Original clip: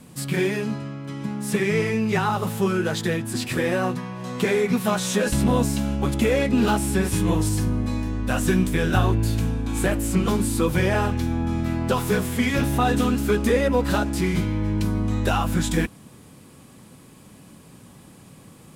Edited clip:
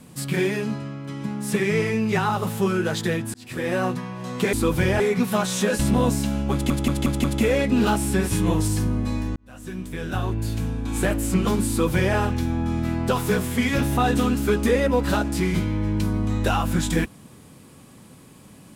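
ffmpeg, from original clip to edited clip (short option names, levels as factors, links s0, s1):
-filter_complex "[0:a]asplit=9[s0][s1][s2][s3][s4][s5][s6][s7][s8];[s0]atrim=end=3.34,asetpts=PTS-STARTPTS,afade=t=out:st=3.336:d=0.004:c=hsin[s9];[s1]atrim=start=3.34:end=4.532,asetpts=PTS-STARTPTS,afade=t=in:d=0.44[s10];[s2]atrim=start=10.498:end=10.972[s11];[s3]atrim=start=4.528:end=6.232[s12];[s4]atrim=start=6.048:end=6.232[s13];[s5]atrim=start=6.048:end=6.232[s14];[s6]atrim=start=6.048:end=6.232[s15];[s7]atrim=start=6.048:end=8.17,asetpts=PTS-STARTPTS,afade=t=out:st=2.118:d=0.004:c=hsin[s16];[s8]atrim=start=8.17,asetpts=PTS-STARTPTS,afade=t=in:d=1.74[s17];[s9][s10]concat=n=2:v=0:a=1[s18];[s18][s11]acrossfade=d=0.004:c1=hsin:c2=hsin[s19];[s19][s12]acrossfade=d=0.004:c1=hsin:c2=hsin[s20];[s20][s13]acrossfade=d=0.004:c1=hsin:c2=hsin[s21];[s21][s14]acrossfade=d=0.004:c1=hsin:c2=hsin[s22];[s22][s15]acrossfade=d=0.004:c1=hsin:c2=hsin[s23];[s16][s17]concat=n=2:v=0:a=1[s24];[s23][s24]acrossfade=d=0.004:c1=hsin:c2=hsin"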